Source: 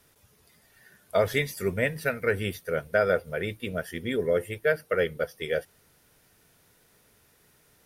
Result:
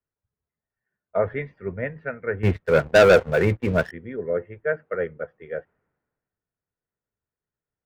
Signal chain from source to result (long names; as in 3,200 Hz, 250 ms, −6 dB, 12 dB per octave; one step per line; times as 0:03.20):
low-pass filter 1,900 Hz 24 dB per octave
0:02.43–0:03.91: leveller curve on the samples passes 3
multiband upward and downward expander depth 70%